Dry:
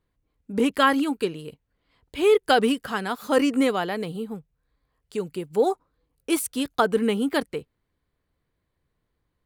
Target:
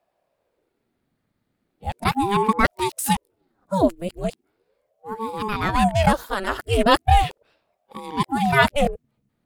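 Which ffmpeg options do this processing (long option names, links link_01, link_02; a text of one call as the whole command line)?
ffmpeg -i in.wav -af "areverse,aeval=exprs='val(0)*sin(2*PI*420*n/s+420*0.6/0.38*sin(2*PI*0.38*n/s))':channel_layout=same,volume=5.5dB" out.wav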